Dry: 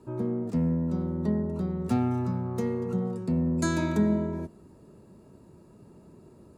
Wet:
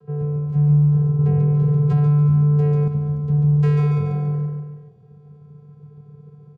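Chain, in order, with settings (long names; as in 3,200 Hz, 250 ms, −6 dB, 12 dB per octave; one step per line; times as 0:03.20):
Butterworth low-pass 5,600 Hz
channel vocoder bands 8, square 147 Hz
on a send: repeating echo 142 ms, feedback 49%, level −4 dB
0:01.19–0:02.88: on the sum: envelope flattener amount 70%
level +7.5 dB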